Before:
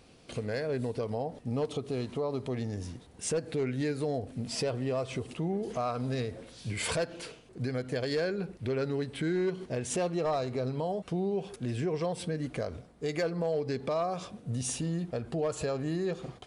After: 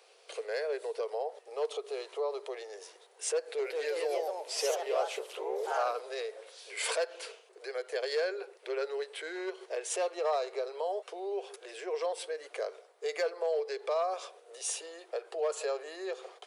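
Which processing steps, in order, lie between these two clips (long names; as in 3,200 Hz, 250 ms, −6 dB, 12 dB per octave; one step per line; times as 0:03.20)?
0:03.39–0:06.10: delay with pitch and tempo change per echo 195 ms, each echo +2 semitones, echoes 2
Butterworth high-pass 400 Hz 72 dB per octave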